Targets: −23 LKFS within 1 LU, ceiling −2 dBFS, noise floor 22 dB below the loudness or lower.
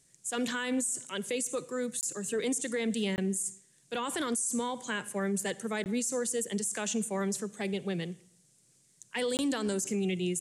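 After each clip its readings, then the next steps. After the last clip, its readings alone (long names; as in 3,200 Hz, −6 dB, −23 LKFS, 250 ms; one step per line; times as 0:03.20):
number of dropouts 4; longest dropout 19 ms; integrated loudness −32.5 LKFS; sample peak −22.0 dBFS; target loudness −23.0 LKFS
→ repair the gap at 0:02.01/0:03.16/0:05.84/0:09.37, 19 ms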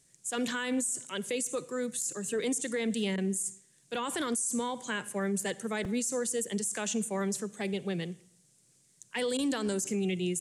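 number of dropouts 0; integrated loudness −32.5 LKFS; sample peak −22.0 dBFS; target loudness −23.0 LKFS
→ level +9.5 dB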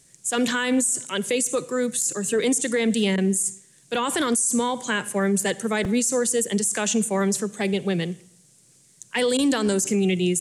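integrated loudness −23.0 LKFS; sample peak −12.5 dBFS; background noise floor −56 dBFS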